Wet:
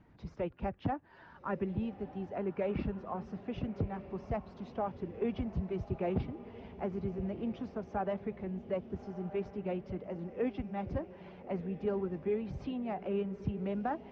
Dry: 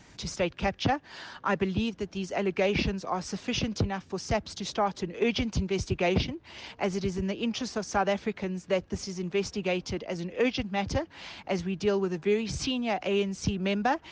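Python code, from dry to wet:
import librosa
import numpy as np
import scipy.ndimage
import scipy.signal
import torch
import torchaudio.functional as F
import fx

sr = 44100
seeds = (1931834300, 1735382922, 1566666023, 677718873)

p1 = fx.spec_quant(x, sr, step_db=15)
p2 = scipy.signal.sosfilt(scipy.signal.butter(2, 1400.0, 'lowpass', fs=sr, output='sos'), p1)
p3 = fx.low_shelf(p2, sr, hz=460.0, db=3.0)
p4 = p3 + fx.echo_diffused(p3, sr, ms=1316, feedback_pct=48, wet_db=-13.5, dry=0)
y = p4 * 10.0 ** (-8.5 / 20.0)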